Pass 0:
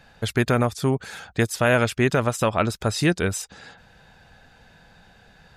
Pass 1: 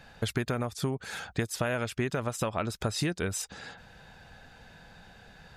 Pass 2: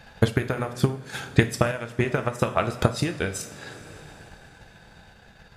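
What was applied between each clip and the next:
downward compressor 10 to 1, threshold −26 dBFS, peak gain reduction 12.5 dB
transient designer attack +9 dB, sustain −10 dB; coupled-rooms reverb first 0.45 s, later 4.6 s, from −18 dB, DRR 6 dB; sample-and-hold tremolo 3.5 Hz; level +4 dB

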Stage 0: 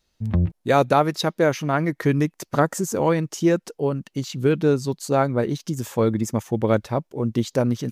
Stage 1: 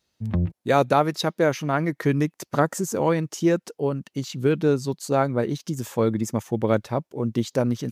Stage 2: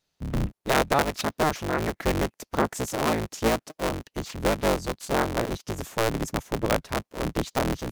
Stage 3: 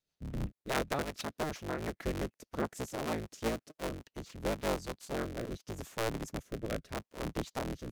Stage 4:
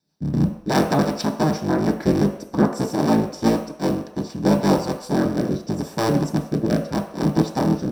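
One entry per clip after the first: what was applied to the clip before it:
high-pass filter 82 Hz; level −1.5 dB
sub-harmonics by changed cycles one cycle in 3, inverted; level −3.5 dB
rotating-speaker cabinet horn 6.3 Hz, later 0.8 Hz, at 0:03.49; level −8.5 dB
convolution reverb RT60 0.70 s, pre-delay 3 ms, DRR 2 dB; level +2.5 dB

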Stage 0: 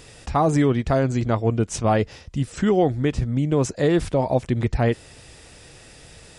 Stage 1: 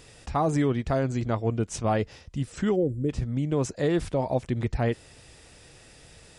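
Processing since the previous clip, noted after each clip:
gain on a spectral selection 0:02.76–0:03.09, 590–7,100 Hz −23 dB
level −5.5 dB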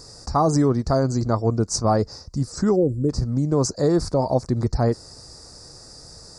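drawn EQ curve 770 Hz 0 dB, 1,200 Hz +2 dB, 3,100 Hz −26 dB, 4,600 Hz +11 dB, 9,900 Hz −1 dB
level +5.5 dB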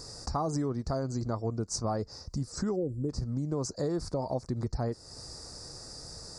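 downward compressor 2.5 to 1, threshold −32 dBFS, peak gain reduction 11.5 dB
level −1.5 dB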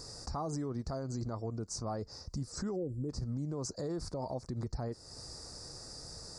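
brickwall limiter −26.5 dBFS, peak gain reduction 6.5 dB
level −2.5 dB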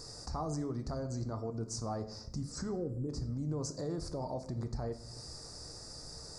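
rectangular room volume 180 cubic metres, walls mixed, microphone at 0.4 metres
level −1 dB

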